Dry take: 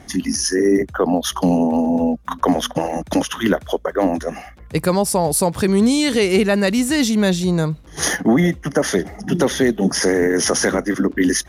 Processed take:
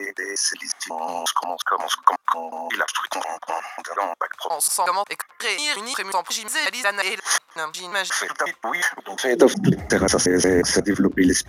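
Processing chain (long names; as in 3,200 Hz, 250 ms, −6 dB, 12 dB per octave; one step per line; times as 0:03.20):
slices reordered back to front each 180 ms, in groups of 5
high-pass filter sweep 1,100 Hz → 83 Hz, 0:09.15–0:09.79
level −1 dB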